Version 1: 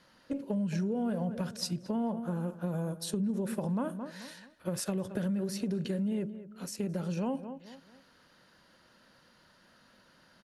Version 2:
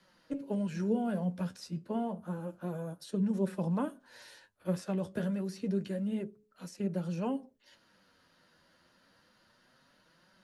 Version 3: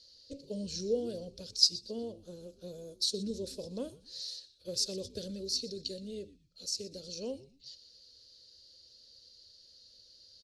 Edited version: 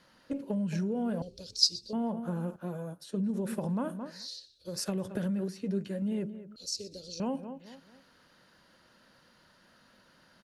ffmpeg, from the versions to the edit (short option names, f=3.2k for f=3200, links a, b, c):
-filter_complex "[2:a]asplit=3[a][b][c];[1:a]asplit=2[d][e];[0:a]asplit=6[f][g][h][i][j][k];[f]atrim=end=1.222[l];[a]atrim=start=1.218:end=1.932[m];[g]atrim=start=1.928:end=2.562[n];[d]atrim=start=2.558:end=3.202[o];[h]atrim=start=3.198:end=4.3[p];[b]atrim=start=4.06:end=4.88[q];[i]atrim=start=4.64:end=5.482[r];[e]atrim=start=5.478:end=6.022[s];[j]atrim=start=6.018:end=6.562[t];[c]atrim=start=6.558:end=7.202[u];[k]atrim=start=7.198[v];[l][m]acrossfade=d=0.004:c1=hsin:c2=hsin[w];[w][n]acrossfade=d=0.004:c1=hsin:c2=hsin[x];[x][o]acrossfade=d=0.004:c1=hsin:c2=hsin[y];[y][p]acrossfade=d=0.004:c1=hsin:c2=hsin[z];[z][q]acrossfade=d=0.24:c1=tri:c2=tri[aa];[aa][r]acrossfade=d=0.24:c1=tri:c2=tri[ab];[ab][s]acrossfade=d=0.004:c1=hsin:c2=hsin[ac];[ac][t]acrossfade=d=0.004:c1=hsin:c2=hsin[ad];[ad][u]acrossfade=d=0.004:c1=hsin:c2=hsin[ae];[ae][v]acrossfade=d=0.004:c1=hsin:c2=hsin"